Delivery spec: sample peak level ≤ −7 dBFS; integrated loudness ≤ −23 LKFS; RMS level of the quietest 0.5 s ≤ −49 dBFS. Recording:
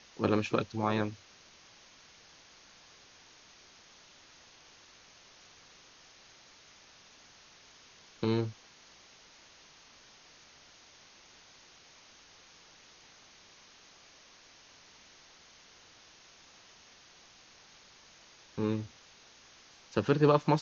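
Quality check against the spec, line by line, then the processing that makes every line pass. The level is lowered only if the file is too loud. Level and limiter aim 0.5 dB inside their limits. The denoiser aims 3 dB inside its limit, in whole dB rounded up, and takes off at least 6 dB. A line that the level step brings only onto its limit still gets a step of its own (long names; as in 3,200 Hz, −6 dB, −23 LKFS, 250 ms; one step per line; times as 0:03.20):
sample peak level −11.5 dBFS: in spec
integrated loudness −31.5 LKFS: in spec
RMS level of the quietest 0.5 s −58 dBFS: in spec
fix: no processing needed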